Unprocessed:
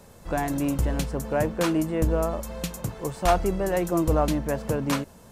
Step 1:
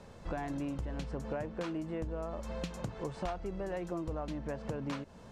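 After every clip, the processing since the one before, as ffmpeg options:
ffmpeg -i in.wav -af "lowpass=4800,acompressor=threshold=-32dB:ratio=12,volume=-2dB" out.wav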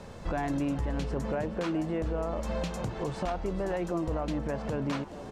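ffmpeg -i in.wav -filter_complex "[0:a]alimiter=level_in=6.5dB:limit=-24dB:level=0:latency=1:release=19,volume=-6.5dB,asplit=6[link_01][link_02][link_03][link_04][link_05][link_06];[link_02]adelay=423,afreqshift=140,volume=-15dB[link_07];[link_03]adelay=846,afreqshift=280,volume=-20.4dB[link_08];[link_04]adelay=1269,afreqshift=420,volume=-25.7dB[link_09];[link_05]adelay=1692,afreqshift=560,volume=-31.1dB[link_10];[link_06]adelay=2115,afreqshift=700,volume=-36.4dB[link_11];[link_01][link_07][link_08][link_09][link_10][link_11]amix=inputs=6:normalize=0,volume=7.5dB" out.wav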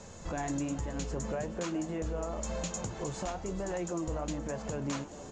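ffmpeg -i in.wav -af "flanger=delay=8.8:depth=7:regen=-59:speed=1.1:shape=triangular,lowpass=frequency=6900:width_type=q:width=8.8" out.wav

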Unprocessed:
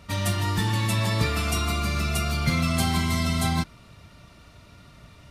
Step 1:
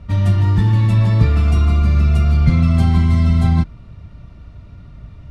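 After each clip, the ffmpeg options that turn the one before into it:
ffmpeg -i in.wav -af "aemphasis=mode=reproduction:type=riaa" out.wav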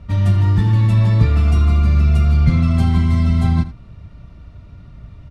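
ffmpeg -i in.wav -af "aecho=1:1:81:0.168,volume=-1dB" out.wav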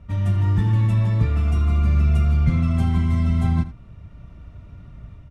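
ffmpeg -i in.wav -af "equalizer=frequency=4400:width_type=o:width=0.44:gain=-8,dynaudnorm=framelen=270:gausssize=3:maxgain=4.5dB,volume=-6.5dB" out.wav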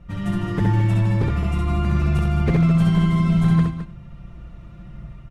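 ffmpeg -i in.wav -af "aecho=1:1:5.8:0.77,aeval=exprs='0.224*(abs(mod(val(0)/0.224+3,4)-2)-1)':channel_layout=same,aecho=1:1:66|212:0.708|0.316" out.wav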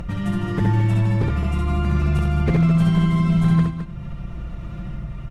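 ffmpeg -i in.wav -af "acompressor=mode=upward:threshold=-20dB:ratio=2.5" out.wav

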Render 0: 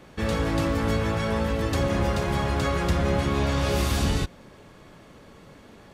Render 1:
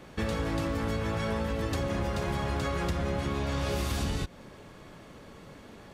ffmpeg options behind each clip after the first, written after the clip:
ffmpeg -i in.wav -af "acompressor=threshold=-27dB:ratio=6" out.wav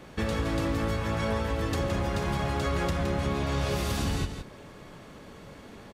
ffmpeg -i in.wav -af "aecho=1:1:167:0.398,volume=1.5dB" out.wav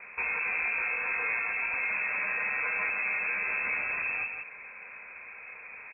ffmpeg -i in.wav -af "asoftclip=type=tanh:threshold=-27dB,highpass=frequency=110:poles=1,lowpass=frequency=2300:width_type=q:width=0.5098,lowpass=frequency=2300:width_type=q:width=0.6013,lowpass=frequency=2300:width_type=q:width=0.9,lowpass=frequency=2300:width_type=q:width=2.563,afreqshift=-2700,volume=2.5dB" out.wav

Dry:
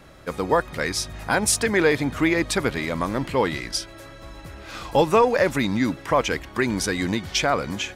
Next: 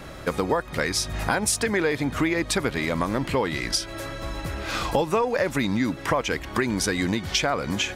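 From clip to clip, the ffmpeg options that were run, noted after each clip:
ffmpeg -i in.wav -af "acompressor=threshold=-31dB:ratio=4,volume=8.5dB" out.wav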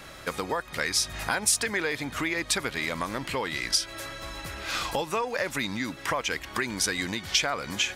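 ffmpeg -i in.wav -af "tiltshelf=frequency=940:gain=-5.5,volume=-4.5dB" out.wav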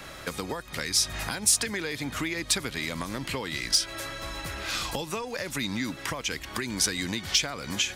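ffmpeg -i in.wav -filter_complex "[0:a]acrossover=split=320|3000[link_01][link_02][link_03];[link_02]acompressor=threshold=-36dB:ratio=6[link_04];[link_01][link_04][link_03]amix=inputs=3:normalize=0,asplit=2[link_05][link_06];[link_06]asoftclip=type=hard:threshold=-18dB,volume=-5.5dB[link_07];[link_05][link_07]amix=inputs=2:normalize=0,volume=-1.5dB" out.wav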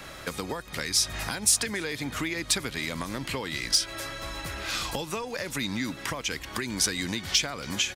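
ffmpeg -i in.wav -filter_complex "[0:a]asplit=2[link_01][link_02];[link_02]adelay=279.9,volume=-23dB,highshelf=frequency=4000:gain=-6.3[link_03];[link_01][link_03]amix=inputs=2:normalize=0" out.wav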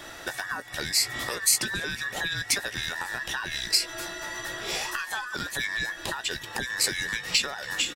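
ffmpeg -i in.wav -filter_complex "[0:a]afftfilt=real='real(if(between(b,1,1012),(2*floor((b-1)/92)+1)*92-b,b),0)':imag='imag(if(between(b,1,1012),(2*floor((b-1)/92)+1)*92-b,b),0)*if(between(b,1,1012),-1,1)':win_size=2048:overlap=0.75,asplit=2[link_01][link_02];[link_02]adelay=17,volume=-11.5dB[link_03];[link_01][link_03]amix=inputs=2:normalize=0" out.wav

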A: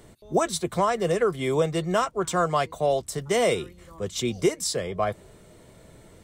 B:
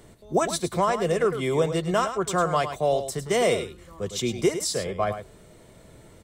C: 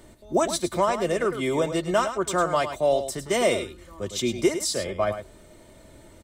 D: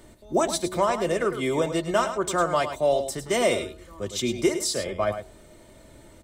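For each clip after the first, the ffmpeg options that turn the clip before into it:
ffmpeg -i in.wav -af "aecho=1:1:105:0.316" out.wav
ffmpeg -i in.wav -af "aecho=1:1:3.3:0.46" out.wav
ffmpeg -i in.wav -af "bandreject=frequency=91.18:width_type=h:width=4,bandreject=frequency=182.36:width_type=h:width=4,bandreject=frequency=273.54:width_type=h:width=4,bandreject=frequency=364.72:width_type=h:width=4,bandreject=frequency=455.9:width_type=h:width=4,bandreject=frequency=547.08:width_type=h:width=4,bandreject=frequency=638.26:width_type=h:width=4,bandreject=frequency=729.44:width_type=h:width=4,bandreject=frequency=820.62:width_type=h:width=4,bandreject=frequency=911.8:width_type=h:width=4,bandreject=frequency=1002.98:width_type=h:width=4,bandreject=frequency=1094.16:width_type=h:width=4" out.wav

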